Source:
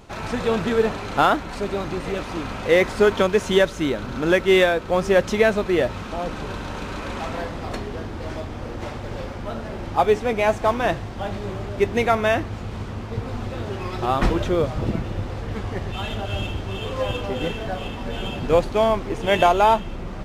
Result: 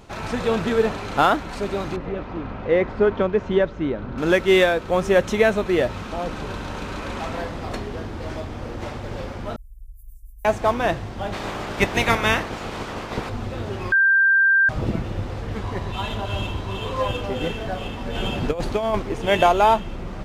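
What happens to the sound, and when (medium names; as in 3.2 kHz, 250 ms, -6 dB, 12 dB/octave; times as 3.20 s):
1.96–4.18 s: tape spacing loss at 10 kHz 36 dB
4.89–5.67 s: peaking EQ 4.8 kHz -6.5 dB 0.21 oct
9.56–10.45 s: inverse Chebyshev band-stop 250–2800 Hz, stop band 80 dB
11.32–13.28 s: spectral peaks clipped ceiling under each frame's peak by 18 dB
13.92–14.69 s: bleep 1.58 kHz -13 dBFS
15.62–17.08 s: small resonant body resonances 1/3.9 kHz, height 12 dB
18.15–19.02 s: compressor with a negative ratio -20 dBFS, ratio -0.5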